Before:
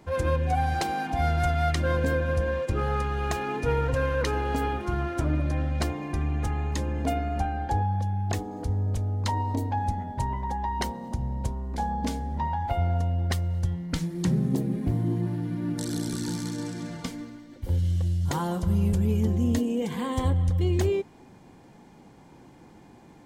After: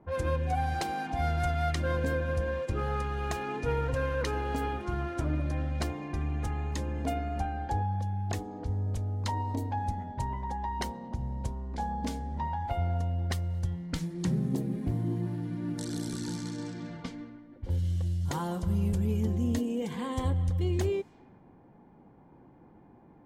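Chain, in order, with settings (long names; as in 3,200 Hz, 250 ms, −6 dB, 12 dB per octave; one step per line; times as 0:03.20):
low-pass that shuts in the quiet parts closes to 1,100 Hz, open at −25 dBFS
level −4.5 dB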